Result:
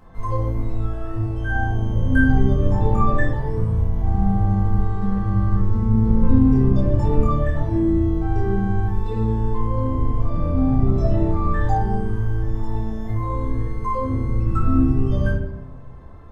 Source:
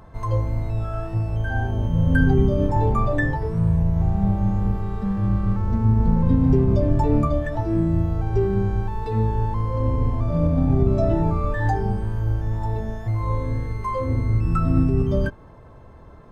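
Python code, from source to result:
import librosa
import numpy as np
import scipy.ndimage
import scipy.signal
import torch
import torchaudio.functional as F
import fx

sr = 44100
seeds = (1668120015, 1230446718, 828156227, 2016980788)

y = fx.room_shoebox(x, sr, seeds[0], volume_m3=210.0, walls='mixed', distance_m=2.0)
y = F.gain(torch.from_numpy(y), -7.0).numpy()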